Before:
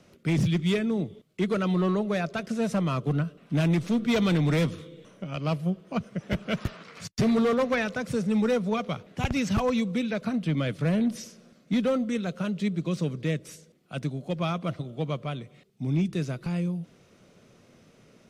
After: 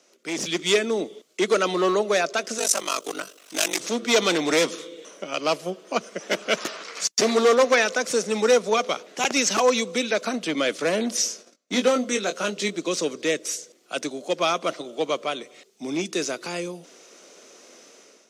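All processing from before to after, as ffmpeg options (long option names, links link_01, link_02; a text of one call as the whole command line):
ffmpeg -i in.wav -filter_complex "[0:a]asettb=1/sr,asplit=3[link_01][link_02][link_03];[link_01]atrim=end=2.584[link_04];[link_02]atrim=start=2.58:end=3.8,asetpts=PTS-STARTPTS,afade=type=in:duration=0.004:curve=qsin,afade=type=out:start_time=1.216:duration=0.004:curve=qsin,aemphasis=mode=production:type=riaa,aeval=exprs='val(0)*sin(2*PI*24*n/s)':channel_layout=same[link_05];[link_03]atrim=start=3.796[link_06];[link_04][link_05]acrossfade=duration=0.004:curve1=hsin:curve2=qsin[link_07];[link_07][link_06]acrossfade=duration=0.004:curve1=qsin:curve2=hsin,asettb=1/sr,asplit=3[link_08][link_09][link_10];[link_08]atrim=end=11.174[link_11];[link_09]atrim=start=11.17:end=12.78,asetpts=PTS-STARTPTS,afade=type=in:duration=0.004:curve=qsin,afade=type=out:start_time=1.606:duration=0.004:curve=qsin,agate=range=-26dB:threshold=-54dB:ratio=16:release=100:detection=peak,asplit=2[link_12][link_13];[link_13]adelay=20,volume=-6.5dB[link_14];[link_12][link_14]amix=inputs=2:normalize=0,atrim=end_sample=71001[link_15];[link_10]atrim=start=12.776[link_16];[link_11][link_15]acrossfade=duration=0.004:curve1=hsin:curve2=qsin[link_17];[link_17][link_16]acrossfade=duration=0.004:curve1=qsin:curve2=hsin,highpass=frequency=320:width=0.5412,highpass=frequency=320:width=1.3066,equalizer=frequency=6400:width=1.2:gain=11.5,dynaudnorm=framelen=170:gausssize=5:maxgain=11dB,volume=-2.5dB" out.wav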